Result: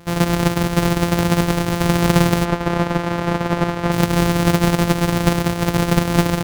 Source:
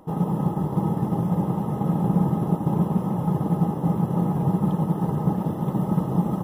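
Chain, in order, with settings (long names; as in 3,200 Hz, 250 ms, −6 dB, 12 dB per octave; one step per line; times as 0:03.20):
samples sorted by size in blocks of 256 samples
0:02.45–0:03.92: mid-hump overdrive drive 8 dB, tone 1,600 Hz, clips at −9 dBFS
level +6 dB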